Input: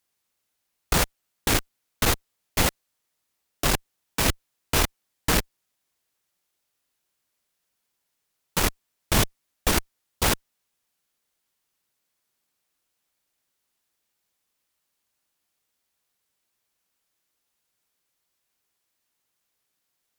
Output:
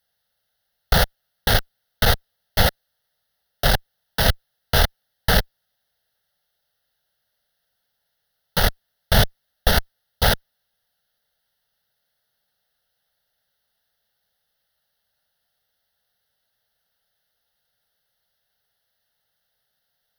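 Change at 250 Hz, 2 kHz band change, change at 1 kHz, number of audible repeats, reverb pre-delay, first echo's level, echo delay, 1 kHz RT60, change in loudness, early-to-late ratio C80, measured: +0.5 dB, +5.0 dB, +4.0 dB, none, none, none, none, none, +4.0 dB, none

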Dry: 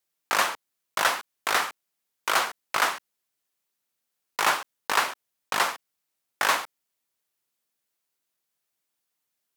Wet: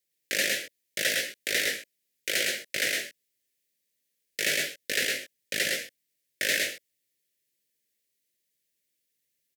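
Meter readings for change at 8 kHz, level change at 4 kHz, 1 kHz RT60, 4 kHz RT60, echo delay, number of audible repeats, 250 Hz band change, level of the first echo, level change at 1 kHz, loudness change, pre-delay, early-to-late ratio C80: +2.0 dB, +1.5 dB, none, none, 0.109 s, 1, +1.5 dB, -3.5 dB, -25.0 dB, -2.0 dB, none, none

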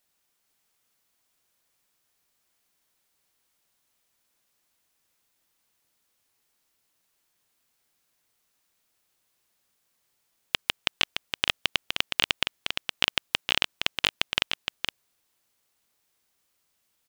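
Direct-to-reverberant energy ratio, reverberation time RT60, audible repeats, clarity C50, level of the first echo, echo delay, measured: none, none, 1, none, -6.0 dB, 0.466 s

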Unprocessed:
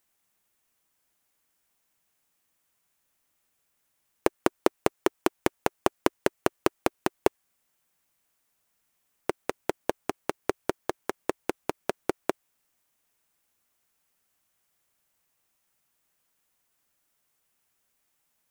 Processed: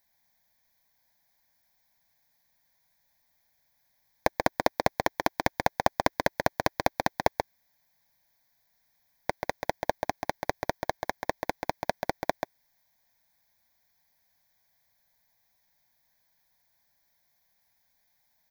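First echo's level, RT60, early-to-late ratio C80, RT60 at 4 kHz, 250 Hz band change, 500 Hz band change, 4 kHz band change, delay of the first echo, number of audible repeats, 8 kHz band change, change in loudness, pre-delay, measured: -5.5 dB, none, none, none, -5.0 dB, -1.5 dB, +2.0 dB, 0.135 s, 1, -1.5 dB, 0.0 dB, none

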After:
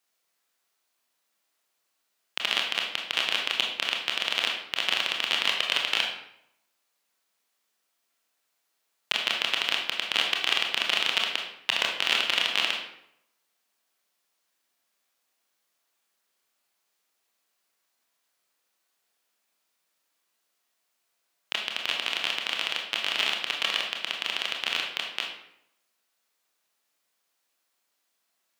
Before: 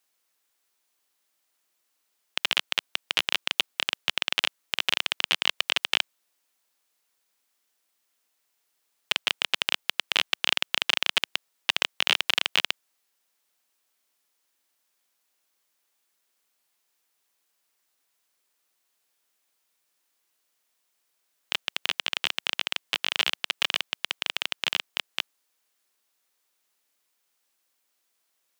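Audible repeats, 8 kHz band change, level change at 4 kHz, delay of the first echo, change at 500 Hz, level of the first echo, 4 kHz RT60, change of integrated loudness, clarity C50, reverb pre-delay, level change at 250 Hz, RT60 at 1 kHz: none, -1.5 dB, 0.0 dB, none, +1.5 dB, none, 0.55 s, 0.0 dB, 4.5 dB, 23 ms, +1.0 dB, 0.75 s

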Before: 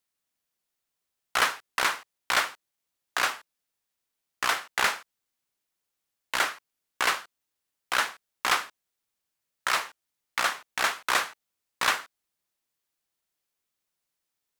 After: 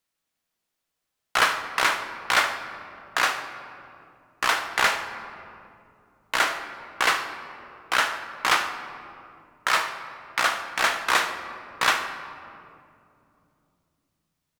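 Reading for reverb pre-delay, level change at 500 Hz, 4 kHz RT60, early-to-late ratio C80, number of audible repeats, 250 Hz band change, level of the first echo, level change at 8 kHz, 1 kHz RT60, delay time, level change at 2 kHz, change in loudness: 6 ms, +5.0 dB, 1.3 s, 9.5 dB, 1, +5.5 dB, -16.0 dB, +1.5 dB, 2.3 s, 74 ms, +4.0 dB, +3.5 dB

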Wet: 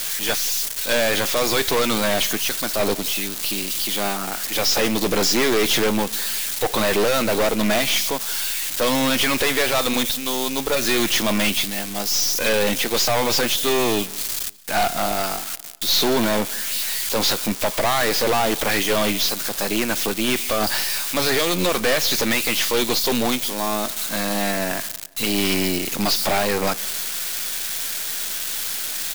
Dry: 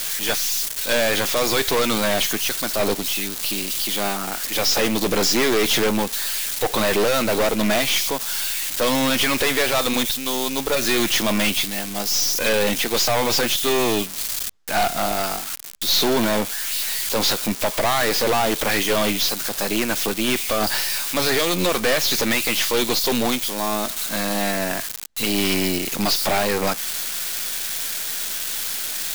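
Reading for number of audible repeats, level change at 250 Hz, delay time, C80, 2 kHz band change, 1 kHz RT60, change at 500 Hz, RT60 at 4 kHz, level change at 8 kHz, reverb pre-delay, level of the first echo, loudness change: 2, 0.0 dB, 0.178 s, none, 0.0 dB, none, 0.0 dB, none, 0.0 dB, none, -23.5 dB, 0.0 dB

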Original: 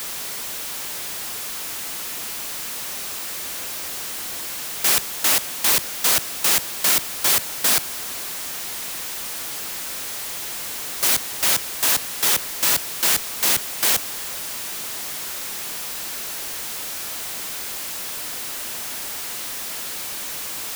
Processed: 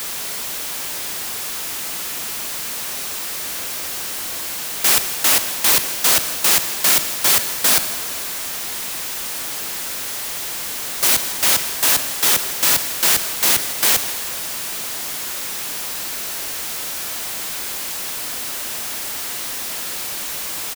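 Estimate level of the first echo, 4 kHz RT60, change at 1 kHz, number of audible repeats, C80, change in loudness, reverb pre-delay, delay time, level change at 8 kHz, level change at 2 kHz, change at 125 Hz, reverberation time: -18.0 dB, 1.8 s, +3.5 dB, 1, 11.0 dB, +3.5 dB, 9 ms, 0.161 s, +3.5 dB, +3.5 dB, +3.5 dB, 1.9 s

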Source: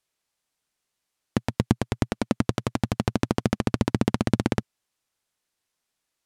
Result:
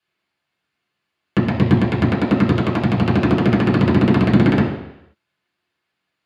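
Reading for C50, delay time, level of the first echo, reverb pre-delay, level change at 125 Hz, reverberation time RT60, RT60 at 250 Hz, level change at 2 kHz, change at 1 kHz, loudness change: 5.5 dB, none, none, 3 ms, +10.0 dB, 0.85 s, 0.80 s, +10.0 dB, +8.0 dB, +10.0 dB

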